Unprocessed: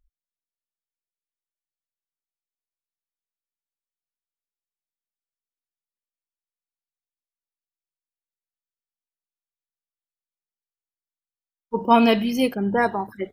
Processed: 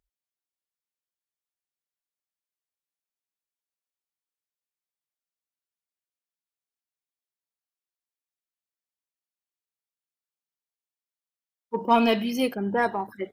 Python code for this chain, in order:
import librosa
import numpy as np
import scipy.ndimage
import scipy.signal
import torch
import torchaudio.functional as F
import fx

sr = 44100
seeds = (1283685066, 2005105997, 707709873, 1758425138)

p1 = fx.highpass(x, sr, hz=200.0, slope=6)
p2 = 10.0 ** (-19.5 / 20.0) * np.tanh(p1 / 10.0 ** (-19.5 / 20.0))
p3 = p1 + (p2 * librosa.db_to_amplitude(-8.0))
y = p3 * librosa.db_to_amplitude(-4.5)